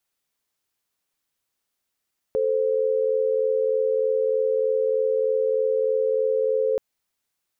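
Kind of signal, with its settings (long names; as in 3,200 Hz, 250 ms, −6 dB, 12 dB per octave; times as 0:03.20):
held notes A4/C5 sine, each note −22 dBFS 4.43 s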